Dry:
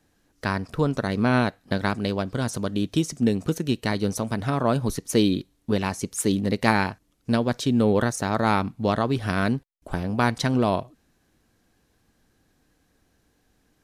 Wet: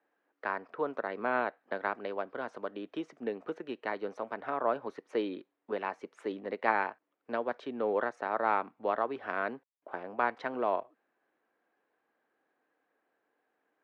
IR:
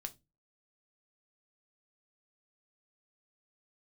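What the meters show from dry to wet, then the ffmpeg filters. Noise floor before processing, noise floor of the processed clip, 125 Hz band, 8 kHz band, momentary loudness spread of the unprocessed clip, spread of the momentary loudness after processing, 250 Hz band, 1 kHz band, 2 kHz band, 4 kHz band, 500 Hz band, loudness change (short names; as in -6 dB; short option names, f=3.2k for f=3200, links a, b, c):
-67 dBFS, -82 dBFS, -31.0 dB, under -35 dB, 7 LU, 9 LU, -18.0 dB, -5.0 dB, -7.0 dB, -19.5 dB, -7.0 dB, -10.0 dB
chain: -filter_complex "[0:a]highpass=200,lowpass=3.7k,acrossover=split=370 2300:gain=0.0708 1 0.1[a][b][c];[a][b][c]amix=inputs=3:normalize=0,aeval=exprs='0.562*(cos(1*acos(clip(val(0)/0.562,-1,1)))-cos(1*PI/2))+0.01*(cos(2*acos(clip(val(0)/0.562,-1,1)))-cos(2*PI/2))':c=same,volume=-4.5dB"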